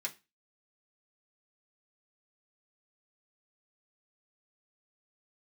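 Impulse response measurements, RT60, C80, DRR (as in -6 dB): 0.25 s, 25.5 dB, -3.0 dB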